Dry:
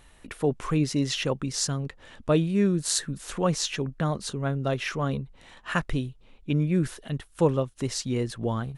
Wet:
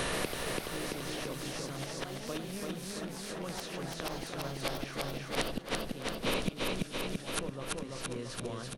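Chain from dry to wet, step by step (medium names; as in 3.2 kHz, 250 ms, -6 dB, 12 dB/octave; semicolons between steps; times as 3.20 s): spectral levelling over time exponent 0.6; bass shelf 120 Hz -7.5 dB; band-stop 860 Hz, Q 12; doubling 16 ms -8 dB; level rider gain up to 10 dB; hum notches 50/100/150/200/250/300 Hz; inverted gate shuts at -21 dBFS, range -36 dB; ever faster or slower copies 126 ms, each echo +3 st, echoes 3, each echo -6 dB; peaking EQ 7.3 kHz -7.5 dB 0.31 oct; feedback delay 336 ms, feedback 56%, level -3.5 dB; three bands compressed up and down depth 70%; trim +7.5 dB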